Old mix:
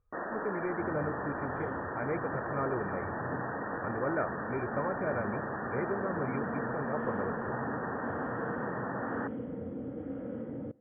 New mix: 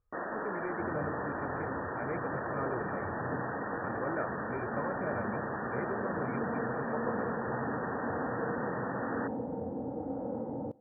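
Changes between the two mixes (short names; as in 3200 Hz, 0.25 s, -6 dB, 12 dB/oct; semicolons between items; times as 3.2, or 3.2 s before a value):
speech -4.0 dB; second sound: add synth low-pass 850 Hz, resonance Q 6.9; master: remove brick-wall FIR low-pass 3400 Hz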